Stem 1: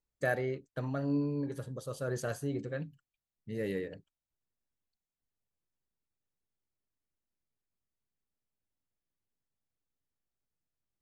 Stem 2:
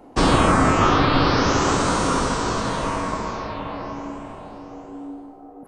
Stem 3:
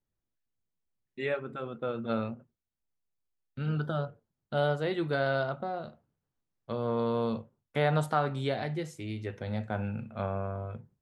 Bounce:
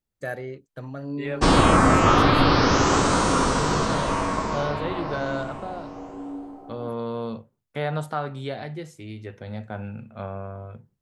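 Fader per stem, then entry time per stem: −0.5, 0.0, −0.5 decibels; 0.00, 1.25, 0.00 seconds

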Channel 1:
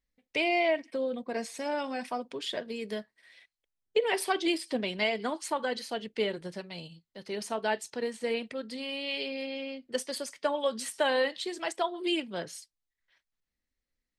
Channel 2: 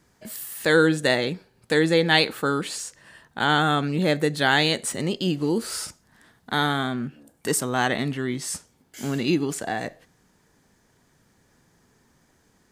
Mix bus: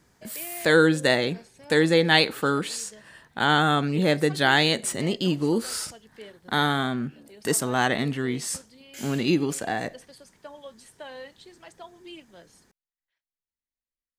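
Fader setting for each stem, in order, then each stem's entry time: −14.0, 0.0 decibels; 0.00, 0.00 seconds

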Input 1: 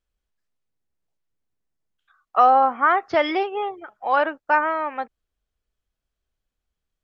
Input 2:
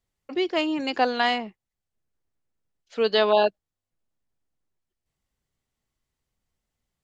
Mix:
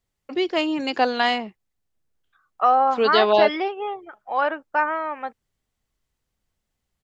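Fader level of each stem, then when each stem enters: −2.5, +2.0 decibels; 0.25, 0.00 seconds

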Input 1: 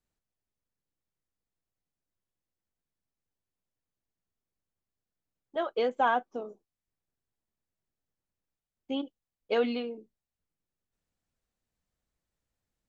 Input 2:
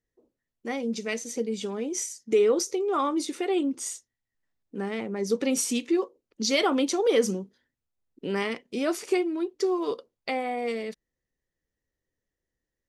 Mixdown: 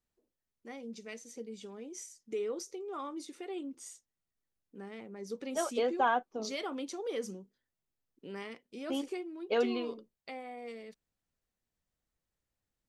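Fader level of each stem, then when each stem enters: −2.5, −14.5 decibels; 0.00, 0.00 seconds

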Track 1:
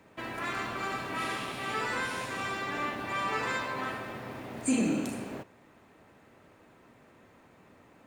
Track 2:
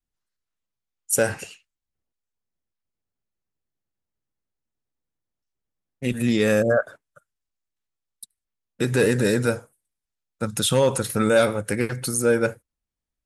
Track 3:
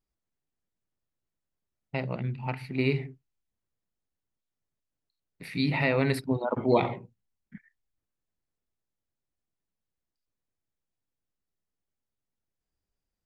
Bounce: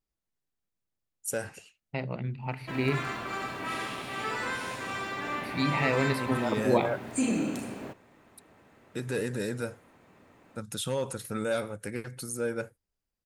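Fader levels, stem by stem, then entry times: −0.5, −12.0, −2.0 decibels; 2.50, 0.15, 0.00 seconds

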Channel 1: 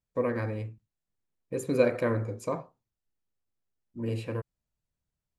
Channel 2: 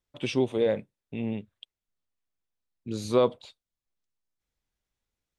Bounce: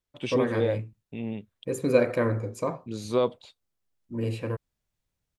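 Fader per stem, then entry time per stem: +2.5, −2.0 decibels; 0.15, 0.00 seconds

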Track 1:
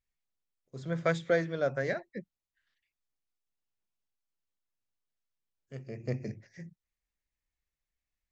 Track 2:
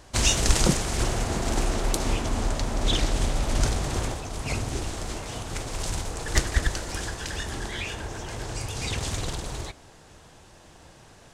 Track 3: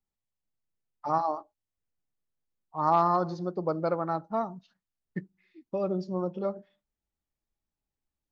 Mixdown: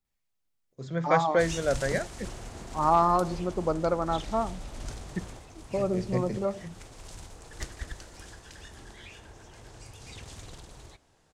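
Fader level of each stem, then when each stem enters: +3.0, −15.0, +1.5 decibels; 0.05, 1.25, 0.00 seconds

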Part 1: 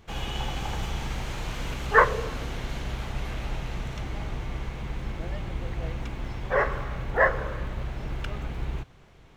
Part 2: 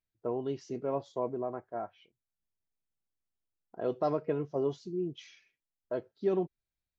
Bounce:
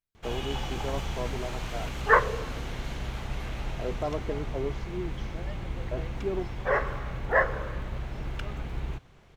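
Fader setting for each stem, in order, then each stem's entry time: −2.0, −2.0 decibels; 0.15, 0.00 seconds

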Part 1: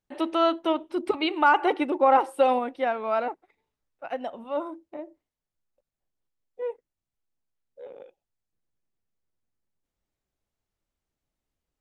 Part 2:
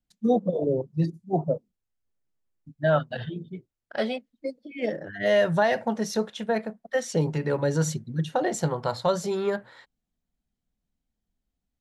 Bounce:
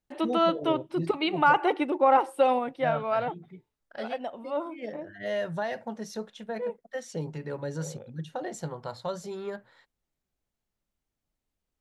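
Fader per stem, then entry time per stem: −1.5, −9.5 decibels; 0.00, 0.00 seconds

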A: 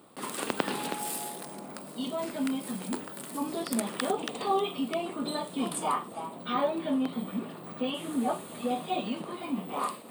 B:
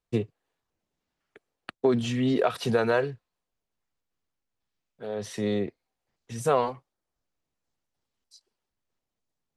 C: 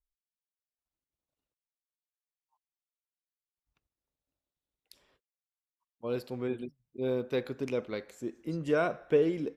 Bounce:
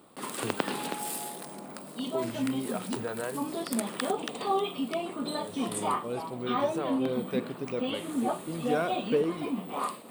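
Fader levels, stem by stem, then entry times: −0.5, −11.5, −1.5 decibels; 0.00, 0.30, 0.00 seconds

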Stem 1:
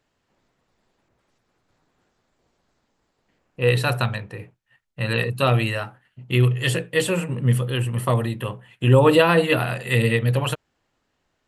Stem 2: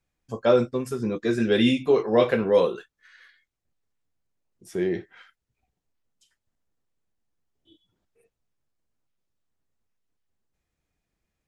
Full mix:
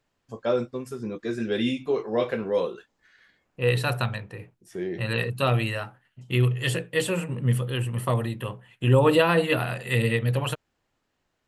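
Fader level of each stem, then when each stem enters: −4.0, −5.5 decibels; 0.00, 0.00 seconds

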